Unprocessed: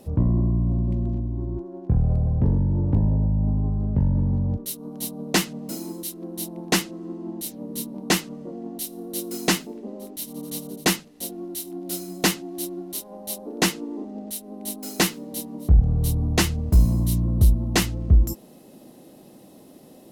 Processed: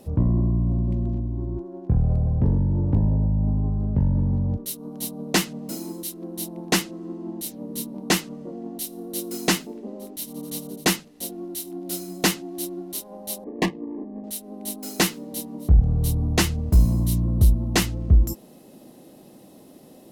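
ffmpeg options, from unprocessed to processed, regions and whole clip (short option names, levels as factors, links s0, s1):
-filter_complex "[0:a]asettb=1/sr,asplit=3[s0][s1][s2];[s0]atrim=end=13.444[s3];[s1]atrim=start=13.44:end=14.24,asetpts=PTS-STARTPTS,afade=t=in:d=0.004:c=qsin,afade=t=out:st=0.796:d=0.004:c=qsin,highshelf=f=8000:g=3.5,adynamicsmooth=sensitivity=1:basefreq=570,asuperstop=centerf=1400:order=12:qfactor=3.3[s4];[s2]atrim=start=14.236[s5];[s3][s4]acrossfade=d=0.004:c1=hsin:c2=qsin[s6];[s6][s5]acrossfade=d=0.004:c1=qsin:c2=hsin"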